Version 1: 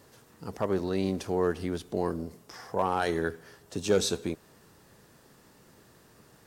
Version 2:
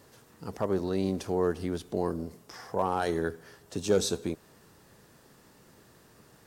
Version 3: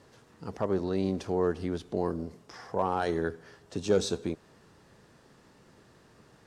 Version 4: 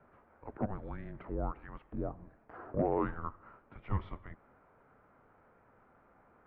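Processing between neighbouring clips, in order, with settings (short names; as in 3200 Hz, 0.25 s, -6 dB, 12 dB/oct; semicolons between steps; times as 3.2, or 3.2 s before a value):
dynamic EQ 2300 Hz, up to -5 dB, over -44 dBFS, Q 0.89
air absorption 62 m
mistuned SSB -400 Hz 570–2300 Hz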